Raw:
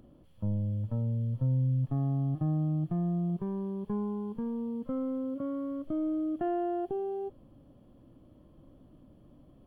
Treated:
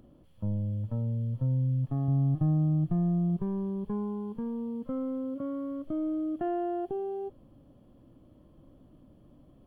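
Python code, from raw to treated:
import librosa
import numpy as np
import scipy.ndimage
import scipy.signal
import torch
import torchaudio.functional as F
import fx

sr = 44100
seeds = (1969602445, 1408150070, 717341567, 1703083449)

y = fx.low_shelf(x, sr, hz=110.0, db=11.5, at=(2.08, 3.9))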